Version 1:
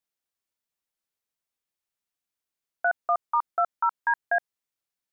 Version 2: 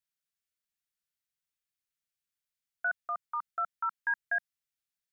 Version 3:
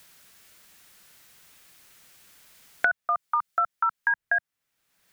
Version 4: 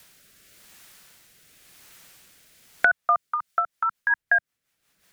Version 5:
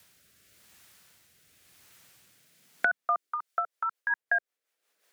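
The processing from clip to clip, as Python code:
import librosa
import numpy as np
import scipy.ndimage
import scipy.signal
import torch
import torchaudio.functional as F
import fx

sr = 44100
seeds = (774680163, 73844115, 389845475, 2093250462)

y1 = fx.band_shelf(x, sr, hz=520.0, db=-13.5, octaves=2.3)
y1 = F.gain(torch.from_numpy(y1), -3.0).numpy()
y2 = fx.band_squash(y1, sr, depth_pct=100)
y2 = F.gain(torch.from_numpy(y2), 8.0).numpy()
y3 = fx.rotary_switch(y2, sr, hz=0.9, then_hz=5.5, switch_at_s=3.0)
y3 = F.gain(torch.from_numpy(y3), 5.5).numpy()
y4 = fx.filter_sweep_highpass(y3, sr, from_hz=69.0, to_hz=450.0, start_s=1.98, end_s=3.45, q=1.9)
y4 = F.gain(torch.from_numpy(y4), -7.0).numpy()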